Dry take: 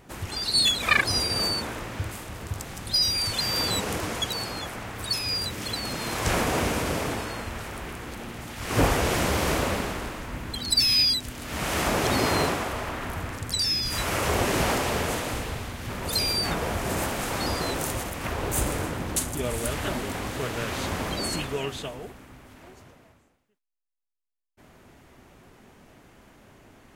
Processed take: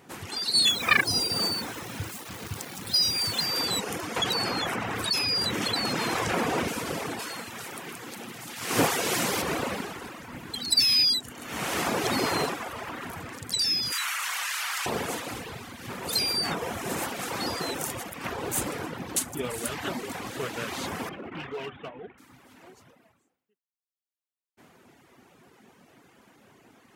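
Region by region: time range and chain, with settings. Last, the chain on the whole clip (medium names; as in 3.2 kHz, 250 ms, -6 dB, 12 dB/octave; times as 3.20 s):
0.68–3.46 s: high-pass 71 Hz 6 dB/octave + bass shelf 200 Hz +7.5 dB + word length cut 6-bit, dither none
4.16–6.68 s: treble shelf 5.4 kHz -7.5 dB + short-mantissa float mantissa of 8-bit + level flattener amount 70%
7.19–9.42 s: high-pass 100 Hz 24 dB/octave + treble shelf 3.4 kHz +6.5 dB
13.92–14.86 s: high-pass 1.2 kHz 24 dB/octave + level flattener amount 100%
21.09–22.18 s: CVSD coder 16 kbps + hard clipper -29.5 dBFS
whole clip: reverb removal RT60 0.99 s; high-pass 150 Hz 12 dB/octave; band-stop 610 Hz, Q 12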